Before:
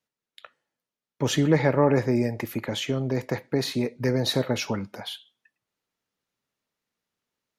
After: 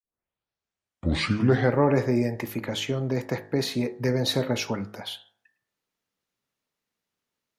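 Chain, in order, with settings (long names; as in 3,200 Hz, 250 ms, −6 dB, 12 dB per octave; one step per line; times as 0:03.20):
turntable start at the beginning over 1.83 s
hum removal 52.55 Hz, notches 37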